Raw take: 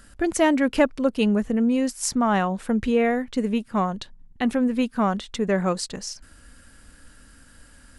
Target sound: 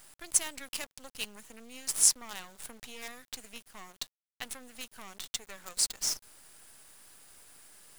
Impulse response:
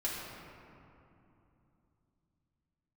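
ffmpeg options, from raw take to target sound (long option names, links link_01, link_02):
-filter_complex "[0:a]acrossover=split=170|3000[link_01][link_02][link_03];[link_02]acompressor=threshold=-27dB:ratio=3[link_04];[link_01][link_04][link_03]amix=inputs=3:normalize=0,aderivative,acrusher=bits=7:dc=4:mix=0:aa=0.000001,volume=4.5dB"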